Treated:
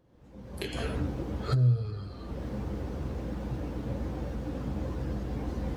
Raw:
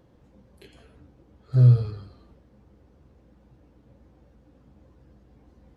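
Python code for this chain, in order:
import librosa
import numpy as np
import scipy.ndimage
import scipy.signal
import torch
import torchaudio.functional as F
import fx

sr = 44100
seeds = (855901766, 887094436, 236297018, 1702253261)

y = fx.recorder_agc(x, sr, target_db=-12.5, rise_db_per_s=43.0, max_gain_db=30)
y = y * librosa.db_to_amplitude(-8.5)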